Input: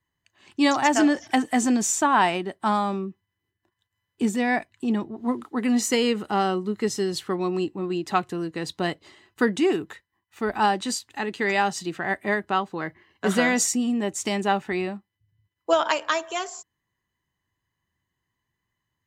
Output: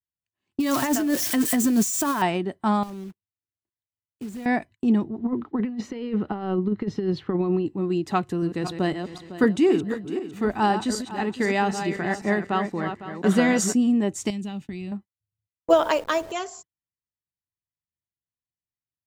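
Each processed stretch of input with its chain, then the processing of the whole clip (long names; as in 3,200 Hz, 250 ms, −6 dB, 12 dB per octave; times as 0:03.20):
0:00.60–0:02.22: spike at every zero crossing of −18 dBFS + Butterworth band-reject 800 Hz, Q 6.1 + compressor whose output falls as the input rises −23 dBFS
0:02.83–0:04.46: one scale factor per block 3 bits + downward compressor 3 to 1, threshold −40 dBFS
0:05.18–0:07.66: high-pass filter 50 Hz + compressor whose output falls as the input rises −26 dBFS, ratio −0.5 + high-frequency loss of the air 290 metres
0:08.17–0:13.74: feedback delay that plays each chunk backwards 253 ms, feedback 48%, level −8 dB + upward compression, threshold −34 dBFS
0:14.30–0:14.92: flat-topped bell 840 Hz −12.5 dB 2.7 octaves + downward compressor 3 to 1, threshold −34 dBFS
0:15.70–0:16.32: hold until the input has moved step −39 dBFS + parametric band 480 Hz +8 dB 0.9 octaves
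whole clip: noise gate −42 dBFS, range −26 dB; low-shelf EQ 400 Hz +10.5 dB; level −3.5 dB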